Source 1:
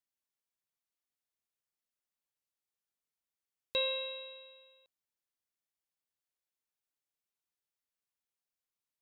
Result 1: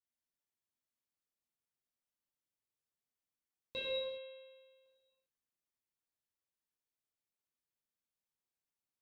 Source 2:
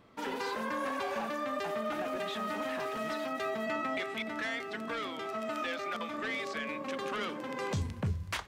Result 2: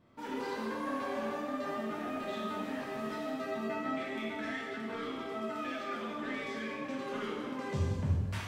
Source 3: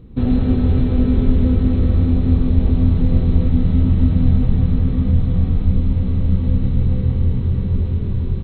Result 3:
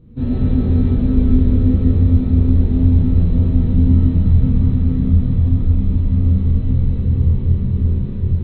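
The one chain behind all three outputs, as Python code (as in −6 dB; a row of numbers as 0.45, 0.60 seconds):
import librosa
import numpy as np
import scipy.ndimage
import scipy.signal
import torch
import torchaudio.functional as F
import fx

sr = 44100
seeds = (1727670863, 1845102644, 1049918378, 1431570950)

y = fx.low_shelf(x, sr, hz=500.0, db=8.5)
y = fx.rev_gated(y, sr, seeds[0], gate_ms=440, shape='falling', drr_db=-7.0)
y = y * librosa.db_to_amplitude(-13.0)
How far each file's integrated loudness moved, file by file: −6.0, −1.5, +1.5 LU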